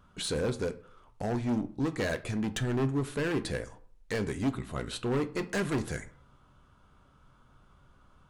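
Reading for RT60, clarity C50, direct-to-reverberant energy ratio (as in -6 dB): 0.50 s, 16.5 dB, 9.5 dB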